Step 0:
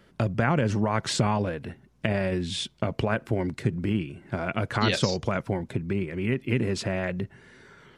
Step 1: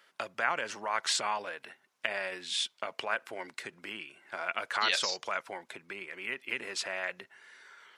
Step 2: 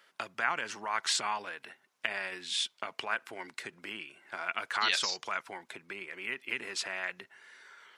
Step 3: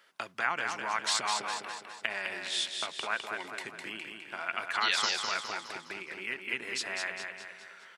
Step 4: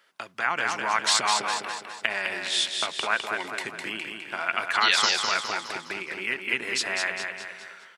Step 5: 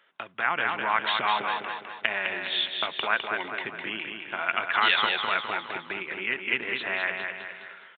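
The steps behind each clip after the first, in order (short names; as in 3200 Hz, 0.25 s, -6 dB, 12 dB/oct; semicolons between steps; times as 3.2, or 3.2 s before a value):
HPF 980 Hz 12 dB/oct
dynamic EQ 560 Hz, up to -8 dB, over -53 dBFS, Q 2.7
feedback echo 0.206 s, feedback 49%, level -5 dB
AGC gain up to 7.5 dB
downsampling 8000 Hz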